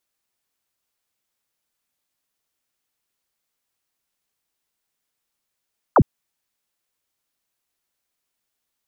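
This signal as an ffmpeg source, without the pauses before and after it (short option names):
-f lavfi -i "aevalsrc='0.355*clip(t/0.002,0,1)*clip((0.06-t)/0.002,0,1)*sin(2*PI*1500*0.06/log(81/1500)*(exp(log(81/1500)*t/0.06)-1))':d=0.06:s=44100"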